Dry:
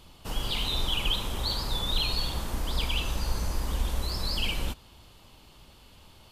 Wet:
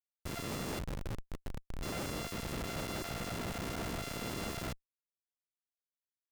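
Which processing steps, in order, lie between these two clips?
sample sorter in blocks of 64 samples; spectral gate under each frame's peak -15 dB weak; 0.79–1.83 Chebyshev low-pass 590 Hz, order 3; Schmitt trigger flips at -37.5 dBFS; gain +3 dB

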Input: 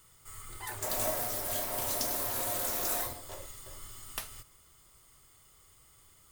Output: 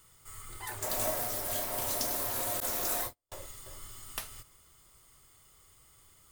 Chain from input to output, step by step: 2.6–3.32 gate -35 dBFS, range -45 dB

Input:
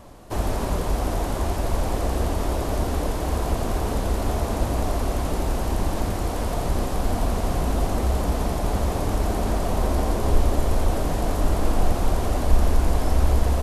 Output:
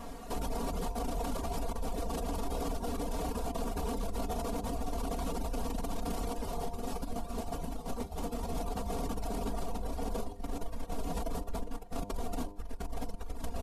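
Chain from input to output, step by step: negative-ratio compressor -24 dBFS, ratio -0.5; reverb RT60 0.30 s, pre-delay 7 ms, DRR 13 dB; dynamic EQ 1800 Hz, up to -6 dB, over -49 dBFS, Q 2.2; 6.33–8.55 resonator 78 Hz, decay 0.76 s, harmonics all, mix 70%; feedback echo 1.011 s, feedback 51%, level -20.5 dB; reverb removal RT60 0.62 s; comb 4.3 ms, depth 100%; de-hum 100.7 Hz, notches 10; limiter -22.5 dBFS, peak gain reduction 15 dB; gain -4 dB

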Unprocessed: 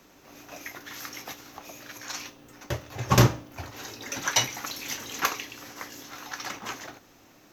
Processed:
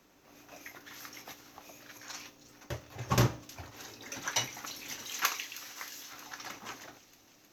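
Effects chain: 5.05–6.13 tilt shelf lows -7 dB, about 840 Hz; on a send: thin delay 0.314 s, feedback 68%, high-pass 3200 Hz, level -15 dB; on the sum: gain -8 dB

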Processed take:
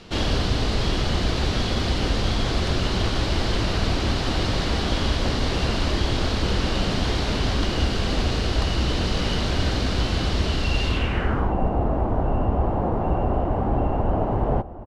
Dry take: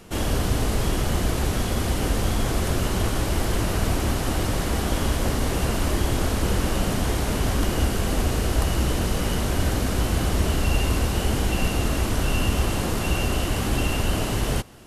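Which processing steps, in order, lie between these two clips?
outdoor echo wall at 220 m, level -17 dB; low-pass sweep 4300 Hz -> 800 Hz, 10.86–11.57; vocal rider

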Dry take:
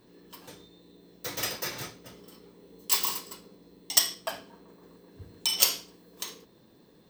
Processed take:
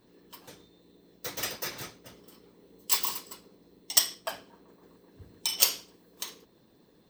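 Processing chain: harmonic-percussive split harmonic -7 dB

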